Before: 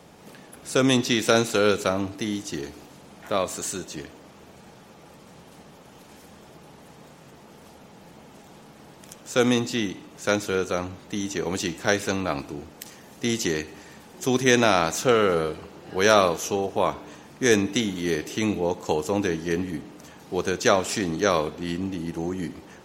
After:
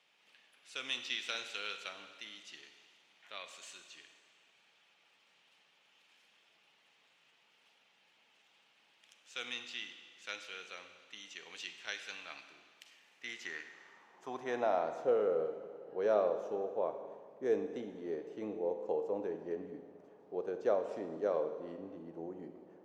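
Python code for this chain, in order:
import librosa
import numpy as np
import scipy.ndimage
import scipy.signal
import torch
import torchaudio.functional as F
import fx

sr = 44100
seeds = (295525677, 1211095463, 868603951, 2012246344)

y = fx.filter_sweep_bandpass(x, sr, from_hz=2800.0, to_hz=520.0, start_s=12.91, end_s=15.03, q=2.2)
y = fx.rev_schroeder(y, sr, rt60_s=1.9, comb_ms=33, drr_db=8.5)
y = F.gain(torch.from_numpy(y), -8.5).numpy()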